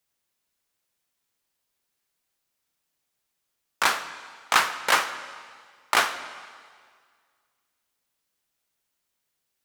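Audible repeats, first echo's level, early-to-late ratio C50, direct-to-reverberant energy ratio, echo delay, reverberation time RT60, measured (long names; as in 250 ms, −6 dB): no echo audible, no echo audible, 12.0 dB, 10.5 dB, no echo audible, 1.9 s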